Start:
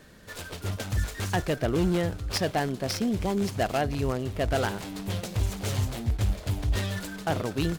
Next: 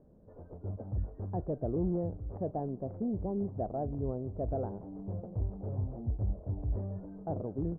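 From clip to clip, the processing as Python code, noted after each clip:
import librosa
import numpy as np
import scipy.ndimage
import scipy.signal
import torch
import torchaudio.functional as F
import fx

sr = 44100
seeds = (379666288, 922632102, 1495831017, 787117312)

y = scipy.signal.sosfilt(scipy.signal.cheby2(4, 70, 3200.0, 'lowpass', fs=sr, output='sos'), x)
y = y * librosa.db_to_amplitude(-6.5)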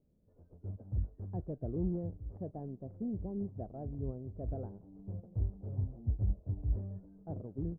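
y = fx.peak_eq(x, sr, hz=920.0, db=-9.5, octaves=2.6)
y = fx.upward_expand(y, sr, threshold_db=-53.0, expansion=1.5)
y = y * librosa.db_to_amplitude(2.0)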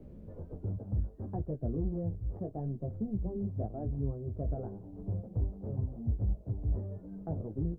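y = fx.chorus_voices(x, sr, voices=2, hz=0.7, base_ms=16, depth_ms=3.0, mix_pct=40)
y = fx.band_squash(y, sr, depth_pct=70)
y = y * librosa.db_to_amplitude(6.0)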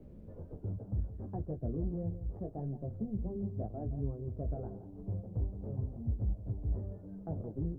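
y = x + 10.0 ** (-12.5 / 20.0) * np.pad(x, (int(169 * sr / 1000.0), 0))[:len(x)]
y = y * librosa.db_to_amplitude(-2.5)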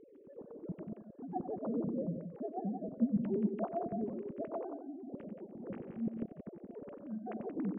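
y = fx.sine_speech(x, sr)
y = fx.echo_multitap(y, sr, ms=(93, 177), db=(-10.5, -8.5))
y = y * librosa.db_to_amplitude(-2.5)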